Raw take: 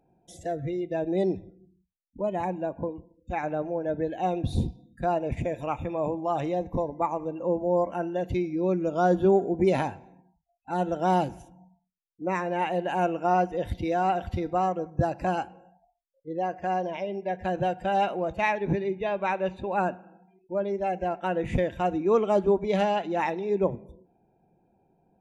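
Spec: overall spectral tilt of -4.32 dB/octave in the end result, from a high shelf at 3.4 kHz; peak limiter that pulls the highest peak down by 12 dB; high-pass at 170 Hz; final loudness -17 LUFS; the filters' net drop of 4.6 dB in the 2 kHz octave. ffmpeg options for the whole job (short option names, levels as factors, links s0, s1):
-af "highpass=170,equalizer=f=2000:t=o:g=-7.5,highshelf=f=3400:g=4,volume=6.31,alimiter=limit=0.447:level=0:latency=1"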